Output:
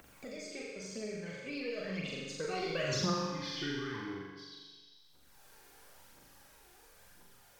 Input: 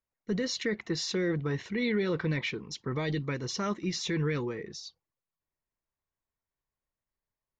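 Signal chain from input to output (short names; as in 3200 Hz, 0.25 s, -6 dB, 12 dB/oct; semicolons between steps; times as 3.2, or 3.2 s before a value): spectral trails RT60 0.56 s; Doppler pass-by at 2.96, 56 m/s, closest 5.7 m; expander -43 dBFS; upward compressor, threshold -37 dBFS; phaser 0.97 Hz, delay 2.9 ms, feedback 67%; flutter echo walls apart 7.2 m, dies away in 0.8 s; Schroeder reverb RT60 0.72 s, combs from 31 ms, DRR 5.5 dB; three-band squash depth 70%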